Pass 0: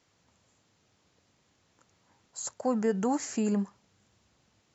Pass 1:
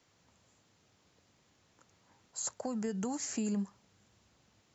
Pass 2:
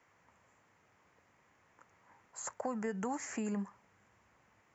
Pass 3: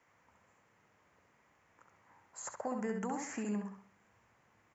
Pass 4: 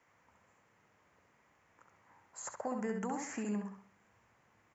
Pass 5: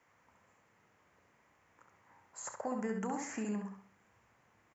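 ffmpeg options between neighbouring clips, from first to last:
ffmpeg -i in.wav -filter_complex "[0:a]acrossover=split=170|3000[link_01][link_02][link_03];[link_02]acompressor=threshold=-37dB:ratio=6[link_04];[link_01][link_04][link_03]amix=inputs=3:normalize=0" out.wav
ffmpeg -i in.wav -af "equalizer=frequency=500:width_type=o:width=1:gain=3,equalizer=frequency=1000:width_type=o:width=1:gain=8,equalizer=frequency=2000:width_type=o:width=1:gain=11,equalizer=frequency=4000:width_type=o:width=1:gain=-11,volume=-4dB" out.wav
ffmpeg -i in.wav -filter_complex "[0:a]asplit=2[link_01][link_02];[link_02]adelay=67,lowpass=frequency=3500:poles=1,volume=-4dB,asplit=2[link_03][link_04];[link_04]adelay=67,lowpass=frequency=3500:poles=1,volume=0.38,asplit=2[link_05][link_06];[link_06]adelay=67,lowpass=frequency=3500:poles=1,volume=0.38,asplit=2[link_07][link_08];[link_08]adelay=67,lowpass=frequency=3500:poles=1,volume=0.38,asplit=2[link_09][link_10];[link_10]adelay=67,lowpass=frequency=3500:poles=1,volume=0.38[link_11];[link_01][link_03][link_05][link_07][link_09][link_11]amix=inputs=6:normalize=0,volume=-2dB" out.wav
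ffmpeg -i in.wav -af anull out.wav
ffmpeg -i in.wav -filter_complex "[0:a]asplit=2[link_01][link_02];[link_02]adelay=32,volume=-13dB[link_03];[link_01][link_03]amix=inputs=2:normalize=0" out.wav

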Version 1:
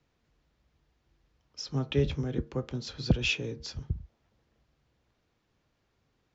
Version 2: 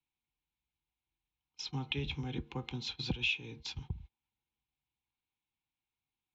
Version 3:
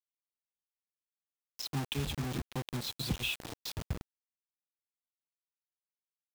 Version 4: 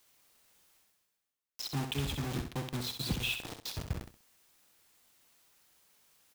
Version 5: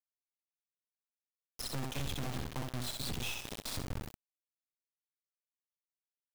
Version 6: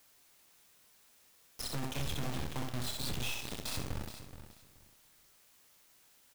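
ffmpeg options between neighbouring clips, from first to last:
ffmpeg -i in.wav -af "agate=range=-20dB:threshold=-42dB:ratio=16:detection=peak,superequalizer=7b=0.562:8b=0.251:9b=2.51:12b=3.98:13b=3.55,acompressor=threshold=-31dB:ratio=2.5,volume=-4dB" out.wav
ffmpeg -i in.wav -filter_complex "[0:a]equalizer=frequency=2100:width=1.4:gain=-10.5,acrossover=split=270|790[link_01][link_02][link_03];[link_02]alimiter=level_in=15.5dB:limit=-24dB:level=0:latency=1:release=219,volume=-15.5dB[link_04];[link_01][link_04][link_03]amix=inputs=3:normalize=0,acrusher=bits=6:mix=0:aa=0.000001,volume=3dB" out.wav
ffmpeg -i in.wav -af "areverse,acompressor=mode=upward:threshold=-44dB:ratio=2.5,areverse,aecho=1:1:65|130|195:0.447|0.112|0.0279" out.wav
ffmpeg -i in.wav -af "alimiter=level_in=6dB:limit=-24dB:level=0:latency=1:release=239,volume=-6dB,asoftclip=type=hard:threshold=-40dB,acrusher=bits=6:dc=4:mix=0:aa=0.000001,volume=8dB" out.wav
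ffmpeg -i in.wav -filter_complex "[0:a]aeval=exprs='val(0)+0.5*0.00211*sgn(val(0))':channel_layout=same,asplit=2[link_01][link_02];[link_02]adelay=27,volume=-10.5dB[link_03];[link_01][link_03]amix=inputs=2:normalize=0,aecho=1:1:426|852|1278:0.251|0.0527|0.0111" out.wav

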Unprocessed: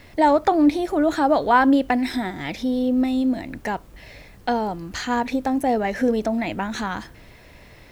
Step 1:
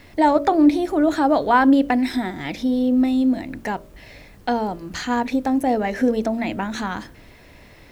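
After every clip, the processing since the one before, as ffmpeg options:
ffmpeg -i in.wav -af "equalizer=frequency=280:width=1.6:gain=3,bandreject=frequency=56.99:width_type=h:width=4,bandreject=frequency=113.98:width_type=h:width=4,bandreject=frequency=170.97:width_type=h:width=4,bandreject=frequency=227.96:width_type=h:width=4,bandreject=frequency=284.95:width_type=h:width=4,bandreject=frequency=341.94:width_type=h:width=4,bandreject=frequency=398.93:width_type=h:width=4,bandreject=frequency=455.92:width_type=h:width=4,bandreject=frequency=512.91:width_type=h:width=4,bandreject=frequency=569.9:width_type=h:width=4,bandreject=frequency=626.89:width_type=h:width=4" out.wav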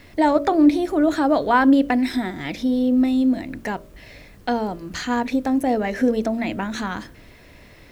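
ffmpeg -i in.wav -af "equalizer=frequency=840:width_type=o:width=0.34:gain=-4" out.wav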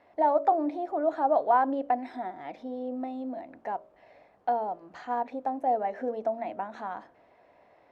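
ffmpeg -i in.wav -af "bandpass=frequency=750:width_type=q:width=3.2:csg=0" out.wav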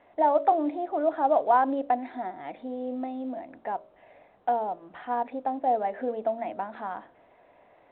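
ffmpeg -i in.wav -af "volume=1.5dB" -ar 8000 -c:a pcm_mulaw out.wav

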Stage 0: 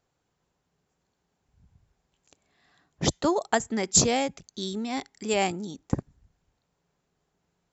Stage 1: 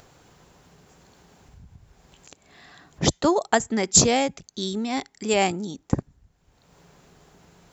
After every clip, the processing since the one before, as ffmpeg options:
ffmpeg -i in.wav -af "acompressor=mode=upward:threshold=-42dB:ratio=2.5,volume=4dB" out.wav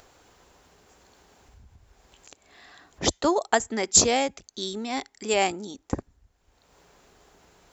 ffmpeg -i in.wav -af "equalizer=frequency=150:width_type=o:width=1:gain=-12.5,volume=-1dB" out.wav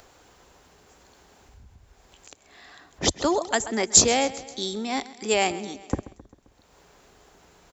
ffmpeg -i in.wav -filter_complex "[0:a]aecho=1:1:132|264|396|528|660:0.126|0.0705|0.0395|0.0221|0.0124,acrossover=split=210|1900[link_01][link_02][link_03];[link_02]alimiter=limit=-18dB:level=0:latency=1:release=23[link_04];[link_01][link_04][link_03]amix=inputs=3:normalize=0,volume=2dB" out.wav

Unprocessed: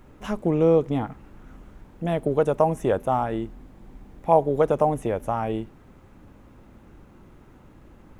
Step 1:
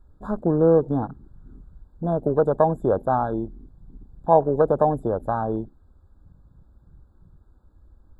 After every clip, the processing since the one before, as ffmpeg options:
ffmpeg -i in.wav -af "afwtdn=0.0178,afftfilt=real='re*eq(mod(floor(b*sr/1024/1700),2),0)':imag='im*eq(mod(floor(b*sr/1024/1700),2),0)':win_size=1024:overlap=0.75,volume=1.5dB" out.wav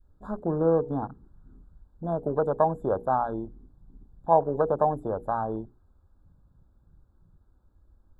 ffmpeg -i in.wav -af "bandreject=frequency=60:width_type=h:width=6,bandreject=frequency=120:width_type=h:width=6,bandreject=frequency=180:width_type=h:width=6,bandreject=frequency=240:width_type=h:width=6,bandreject=frequency=300:width_type=h:width=6,bandreject=frequency=360:width_type=h:width=6,bandreject=frequency=420:width_type=h:width=6,bandreject=frequency=480:width_type=h:width=6,adynamicequalizer=threshold=0.02:dfrequency=1000:dqfactor=1.1:tfrequency=1000:tqfactor=1.1:attack=5:release=100:ratio=0.375:range=2.5:mode=boostabove:tftype=bell,volume=-6.5dB" out.wav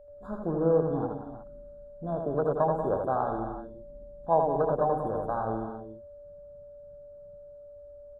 ffmpeg -i in.wav -filter_complex "[0:a]bandreject=frequency=880:width=12,aeval=exprs='val(0)+0.00501*sin(2*PI*580*n/s)':channel_layout=same,asplit=2[link_01][link_02];[link_02]aecho=0:1:81|185|235|319|365:0.631|0.355|0.211|0.211|0.2[link_03];[link_01][link_03]amix=inputs=2:normalize=0,volume=-3.5dB" out.wav

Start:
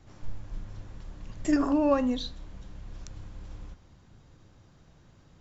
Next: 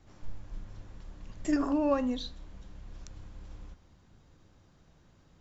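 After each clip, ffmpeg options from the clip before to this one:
ffmpeg -i in.wav -af "equalizer=frequency=120:width=4.1:gain=-5.5,volume=-3.5dB" out.wav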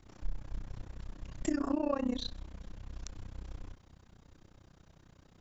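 ffmpeg -i in.wav -af "acompressor=threshold=-31dB:ratio=4,tremolo=f=31:d=0.947,volume=5.5dB" out.wav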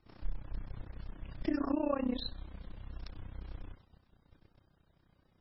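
ffmpeg -i in.wav -af "agate=range=-9dB:threshold=-55dB:ratio=16:detection=peak" -ar 22050 -c:a libmp3lame -b:a 16k out.mp3

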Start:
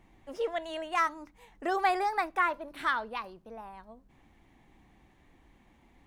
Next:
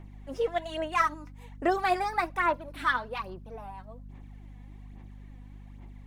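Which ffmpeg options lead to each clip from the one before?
ffmpeg -i in.wav -af "aphaser=in_gain=1:out_gain=1:delay=4.1:decay=0.56:speed=1.2:type=sinusoidal,aeval=exprs='val(0)+0.00562*(sin(2*PI*50*n/s)+sin(2*PI*2*50*n/s)/2+sin(2*PI*3*50*n/s)/3+sin(2*PI*4*50*n/s)/4+sin(2*PI*5*50*n/s)/5)':channel_layout=same" out.wav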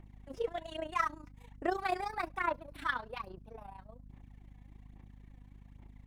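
ffmpeg -i in.wav -af "tremolo=f=29:d=0.75,volume=-4dB" out.wav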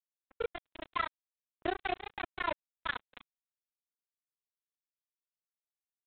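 ffmpeg -i in.wav -af "bandreject=frequency=1200:width=11,aresample=8000,acrusher=bits=4:mix=0:aa=0.5,aresample=44100,volume=-1.5dB" out.wav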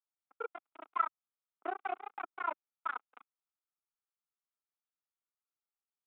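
ffmpeg -i in.wav -af "highpass=frequency=300:width=0.5412,highpass=frequency=300:width=1.3066,equalizer=frequency=350:width_type=q:width=4:gain=-5,equalizer=frequency=550:width_type=q:width=4:gain=-7,equalizer=frequency=810:width_type=q:width=4:gain=5,equalizer=frequency=1300:width_type=q:width=4:gain=10,equalizer=frequency=1800:width_type=q:width=4:gain=-10,lowpass=frequency=2200:width=0.5412,lowpass=frequency=2200:width=1.3066,volume=-3.5dB" out.wav

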